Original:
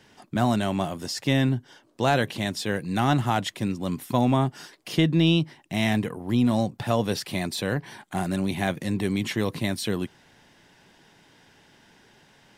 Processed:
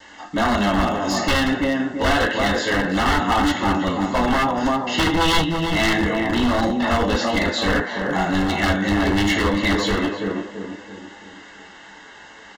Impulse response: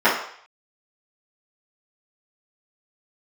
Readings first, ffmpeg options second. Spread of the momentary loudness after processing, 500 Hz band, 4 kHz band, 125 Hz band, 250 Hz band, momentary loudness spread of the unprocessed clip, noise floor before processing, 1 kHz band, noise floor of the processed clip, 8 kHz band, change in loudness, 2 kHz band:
6 LU, +6.0 dB, +7.5 dB, -1.0 dB, +4.5 dB, 8 LU, -58 dBFS, +8.5 dB, -43 dBFS, +5.5 dB, +5.5 dB, +11.0 dB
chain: -filter_complex "[0:a]asplit=2[s0][s1];[s1]adelay=334,lowpass=f=880:p=1,volume=0.631,asplit=2[s2][s3];[s3]adelay=334,lowpass=f=880:p=1,volume=0.48,asplit=2[s4][s5];[s5]adelay=334,lowpass=f=880:p=1,volume=0.48,asplit=2[s6][s7];[s7]adelay=334,lowpass=f=880:p=1,volume=0.48,asplit=2[s8][s9];[s9]adelay=334,lowpass=f=880:p=1,volume=0.48,asplit=2[s10][s11];[s11]adelay=334,lowpass=f=880:p=1,volume=0.48[s12];[s2][s4][s6][s8][s10][s12]amix=inputs=6:normalize=0[s13];[s0][s13]amix=inputs=2:normalize=0[s14];[1:a]atrim=start_sample=2205,asetrate=57330,aresample=44100[s15];[s14][s15]afir=irnorm=-1:irlink=0,aresample=16000,acrusher=bits=7:mix=0:aa=0.000001,aresample=44100,acrossover=split=390[s16][s17];[s17]acompressor=threshold=0.178:ratio=2[s18];[s16][s18]amix=inputs=2:normalize=0,aeval=exprs='0.562*(abs(mod(val(0)/0.562+3,4)-2)-1)':c=same,asuperstop=centerf=2400:order=20:qfactor=7.4,equalizer=f=420:t=o:w=2.1:g=-6,flanger=delay=3.4:depth=7.2:regen=-61:speed=0.27:shape=sinusoidal,lowshelf=f=100:t=q:w=3:g=7"

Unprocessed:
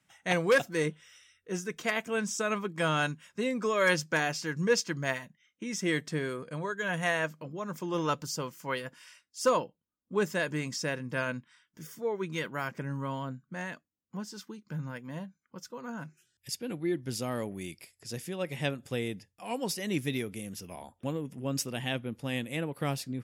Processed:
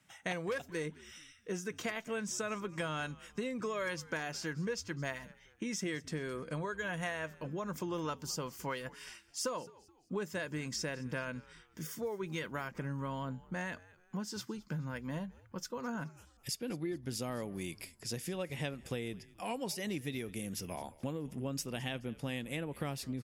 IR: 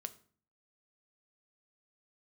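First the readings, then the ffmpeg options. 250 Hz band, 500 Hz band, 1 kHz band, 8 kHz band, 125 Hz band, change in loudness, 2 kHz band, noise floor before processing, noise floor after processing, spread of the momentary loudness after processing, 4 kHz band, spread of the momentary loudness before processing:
-5.0 dB, -7.5 dB, -7.5 dB, -4.0 dB, -4.5 dB, -7.0 dB, -8.0 dB, -80 dBFS, -64 dBFS, 6 LU, -5.5 dB, 15 LU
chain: -filter_complex "[0:a]acompressor=threshold=0.0112:ratio=6,asplit=2[s0][s1];[s1]asplit=3[s2][s3][s4];[s2]adelay=213,afreqshift=-87,volume=0.0891[s5];[s3]adelay=426,afreqshift=-174,volume=0.0339[s6];[s4]adelay=639,afreqshift=-261,volume=0.0129[s7];[s5][s6][s7]amix=inputs=3:normalize=0[s8];[s0][s8]amix=inputs=2:normalize=0,volume=1.5"

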